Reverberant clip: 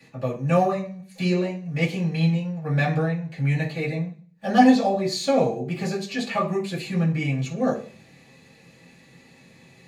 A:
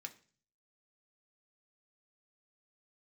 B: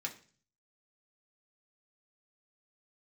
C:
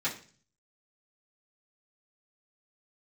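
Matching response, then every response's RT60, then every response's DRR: C; 0.40, 0.40, 0.40 s; 4.0, -0.5, -10.0 dB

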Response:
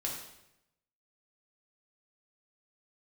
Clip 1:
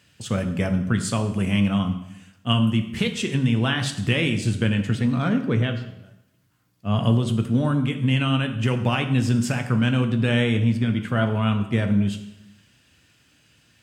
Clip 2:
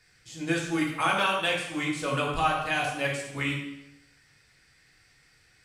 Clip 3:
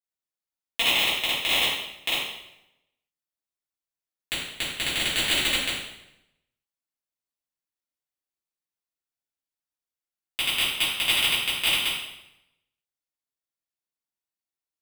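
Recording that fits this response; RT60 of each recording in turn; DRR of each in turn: 2; 0.85, 0.85, 0.85 s; 6.5, -3.0, -11.5 dB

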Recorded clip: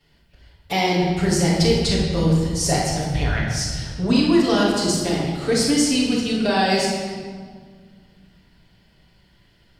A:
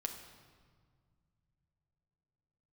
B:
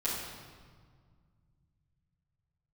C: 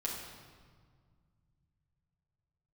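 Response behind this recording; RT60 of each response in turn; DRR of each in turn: B; 1.9, 1.8, 1.8 s; 3.5, -11.0, -4.5 dB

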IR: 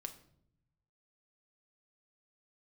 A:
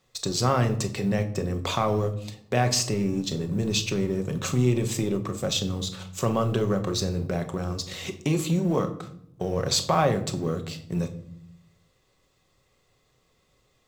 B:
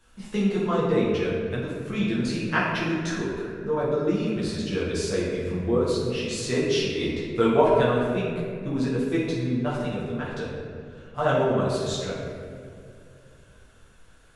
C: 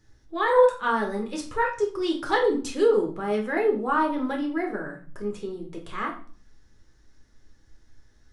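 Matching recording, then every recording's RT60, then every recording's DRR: A; 0.70, 2.4, 0.45 s; 6.0, -8.0, 1.0 dB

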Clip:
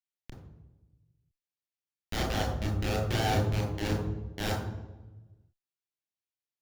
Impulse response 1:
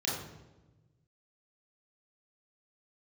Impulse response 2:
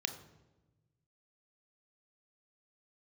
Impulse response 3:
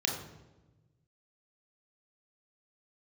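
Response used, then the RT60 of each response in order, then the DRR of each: 3; 1.1, 1.1, 1.1 s; -6.0, 7.5, 0.0 dB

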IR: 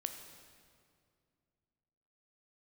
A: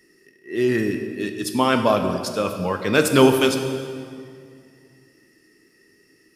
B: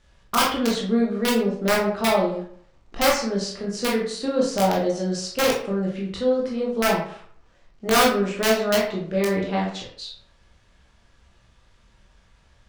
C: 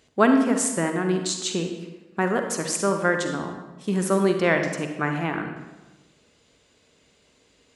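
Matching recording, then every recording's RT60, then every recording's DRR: A; 2.3, 0.60, 1.2 s; 5.5, -4.0, 5.0 dB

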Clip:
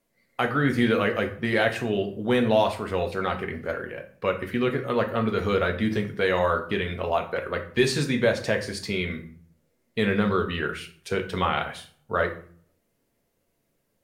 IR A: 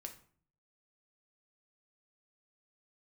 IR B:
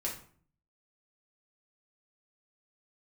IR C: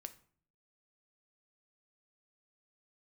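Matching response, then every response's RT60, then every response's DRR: A; 0.50, 0.50, 0.50 s; 3.5, -4.0, 8.5 dB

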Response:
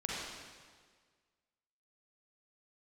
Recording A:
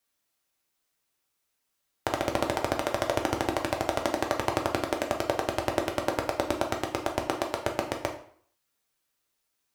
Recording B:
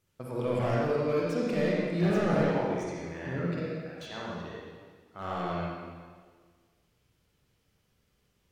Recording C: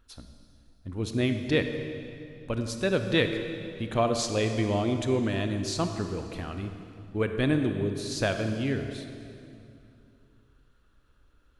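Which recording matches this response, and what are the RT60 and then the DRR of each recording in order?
B; 0.55, 1.7, 2.7 s; 1.5, -5.5, 6.5 dB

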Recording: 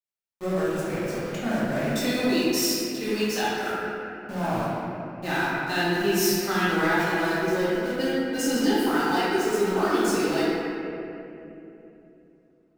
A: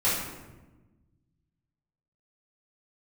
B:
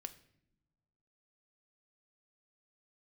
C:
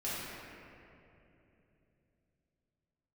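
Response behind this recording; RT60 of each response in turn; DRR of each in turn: C; 1.2 s, not exponential, 3.0 s; -11.5, 9.0, -10.5 dB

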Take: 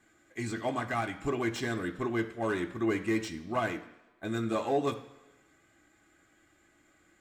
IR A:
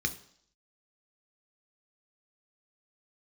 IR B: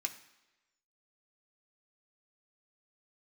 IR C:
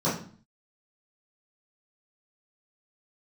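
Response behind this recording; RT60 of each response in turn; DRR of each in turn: B; 0.65, 1.1, 0.45 s; 7.5, 4.5, -11.0 dB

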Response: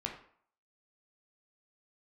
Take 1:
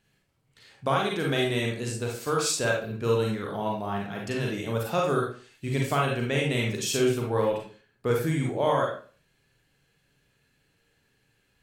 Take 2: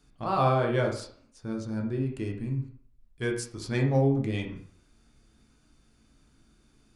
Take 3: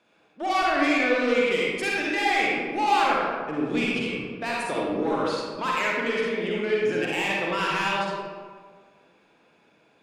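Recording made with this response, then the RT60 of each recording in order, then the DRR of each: 2; 0.40, 0.55, 1.6 s; -1.5, 0.5, -5.0 dB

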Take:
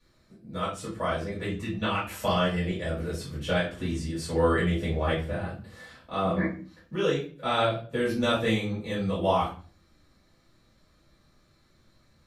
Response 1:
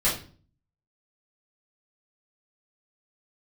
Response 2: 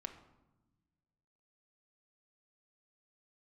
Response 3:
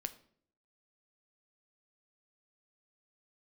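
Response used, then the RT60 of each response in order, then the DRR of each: 1; 0.40, 1.1, 0.60 s; -9.0, 6.0, 9.5 dB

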